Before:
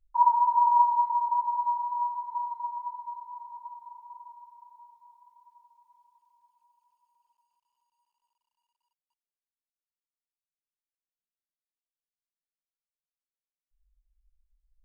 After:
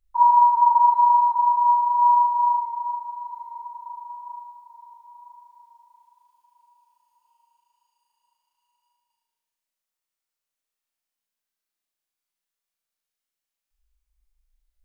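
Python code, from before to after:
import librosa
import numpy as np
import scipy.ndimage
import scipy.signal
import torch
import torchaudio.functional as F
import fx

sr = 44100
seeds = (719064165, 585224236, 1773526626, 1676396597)

y = fx.low_shelf(x, sr, hz=380.0, db=-7.5)
y = fx.room_flutter(y, sr, wall_m=6.4, rt60_s=1.3)
y = y * 10.0 ** (4.0 / 20.0)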